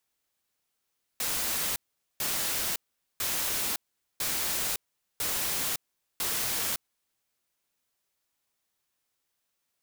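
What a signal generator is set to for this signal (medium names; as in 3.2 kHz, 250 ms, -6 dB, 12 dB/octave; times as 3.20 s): noise bursts white, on 0.56 s, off 0.44 s, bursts 6, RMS -30 dBFS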